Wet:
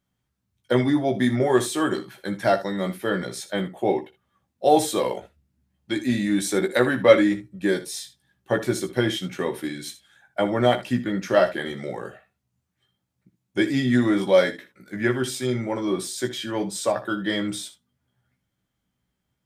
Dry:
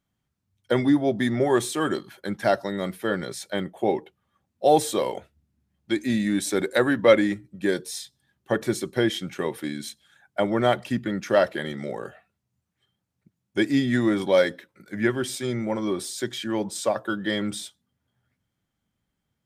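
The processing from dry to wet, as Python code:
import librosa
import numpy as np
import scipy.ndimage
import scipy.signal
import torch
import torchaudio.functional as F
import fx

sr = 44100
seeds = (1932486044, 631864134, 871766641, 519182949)

y = fx.room_early_taps(x, sr, ms=(16, 61, 77), db=(-5.0, -16.5, -14.5))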